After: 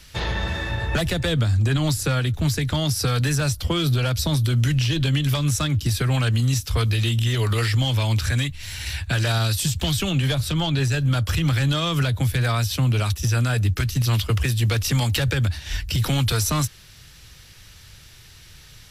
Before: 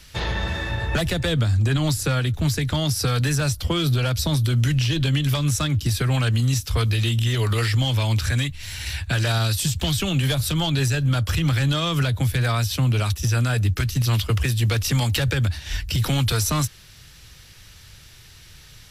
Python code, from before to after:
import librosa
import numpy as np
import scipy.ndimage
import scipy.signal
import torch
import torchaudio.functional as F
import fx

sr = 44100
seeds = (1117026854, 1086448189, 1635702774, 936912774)

y = fx.high_shelf(x, sr, hz=fx.line((10.1, 10000.0), (10.9, 6600.0)), db=-9.5, at=(10.1, 10.9), fade=0.02)